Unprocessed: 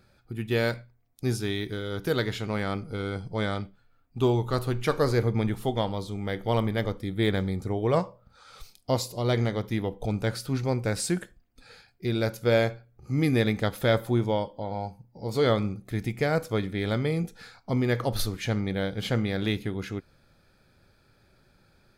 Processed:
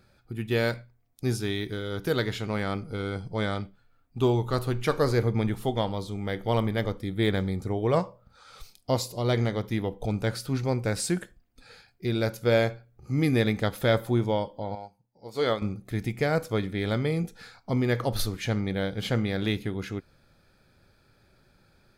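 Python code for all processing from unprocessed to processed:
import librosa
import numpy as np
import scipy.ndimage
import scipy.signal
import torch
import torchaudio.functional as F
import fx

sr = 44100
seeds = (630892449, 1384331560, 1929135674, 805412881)

y = fx.chain(x, sr, fx.low_shelf(hz=210.0, db=-12.0),
    fx.upward_expand(threshold_db=-44.0, expansion=1.5), at=(14.75, 15.62))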